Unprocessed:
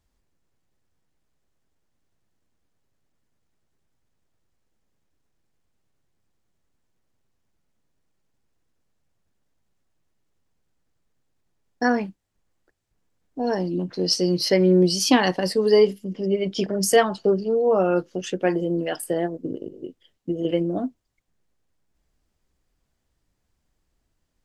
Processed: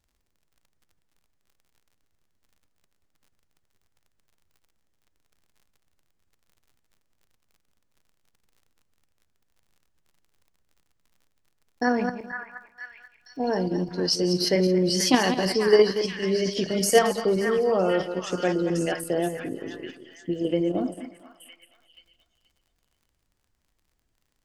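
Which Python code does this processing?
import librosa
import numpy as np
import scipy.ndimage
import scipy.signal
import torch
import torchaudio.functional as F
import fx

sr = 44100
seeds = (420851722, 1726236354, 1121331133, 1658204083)

p1 = fx.reverse_delay_fb(x, sr, ms=112, feedback_pct=45, wet_db=-8)
p2 = fx.echo_stepped(p1, sr, ms=481, hz=1500.0, octaves=0.7, feedback_pct=70, wet_db=-3.5)
p3 = fx.dmg_crackle(p2, sr, seeds[0], per_s=52.0, level_db=-49.0)
p4 = fx.level_steps(p3, sr, step_db=13)
p5 = p3 + (p4 * librosa.db_to_amplitude(1.0))
y = p5 * librosa.db_to_amplitude(-6.5)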